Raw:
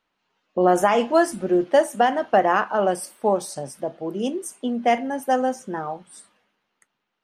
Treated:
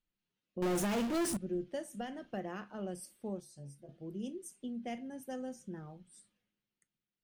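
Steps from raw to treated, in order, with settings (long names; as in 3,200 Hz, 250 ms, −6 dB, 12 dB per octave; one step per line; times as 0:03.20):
guitar amp tone stack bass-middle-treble 10-0-1
0:03.40–0:03.89: stiff-string resonator 70 Hz, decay 0.25 s, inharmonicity 0.002
on a send at −12.5 dB: convolution reverb, pre-delay 6 ms
0:00.62–0:01.37: on the sum: power curve on the samples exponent 0.35
in parallel at −2.5 dB: downward compressor, threshold −46 dBFS, peak gain reduction 12.5 dB
on the sum: level +1 dB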